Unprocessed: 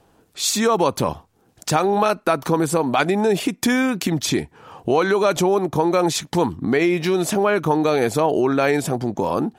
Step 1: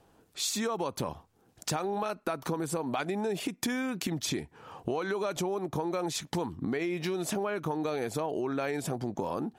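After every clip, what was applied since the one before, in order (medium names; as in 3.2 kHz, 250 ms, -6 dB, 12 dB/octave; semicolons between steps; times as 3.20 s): compression 5:1, threshold -23 dBFS, peak gain reduction 9.5 dB; trim -6 dB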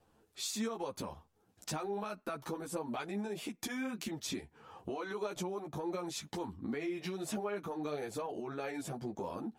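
wow and flutter 17 cents; three-phase chorus; trim -4 dB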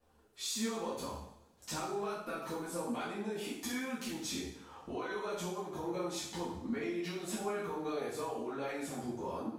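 two-slope reverb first 0.68 s, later 2.2 s, from -24 dB, DRR -8.5 dB; trim -7.5 dB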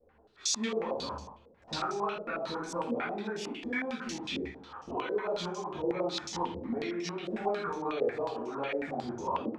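step-sequenced low-pass 11 Hz 500–5900 Hz; trim +1.5 dB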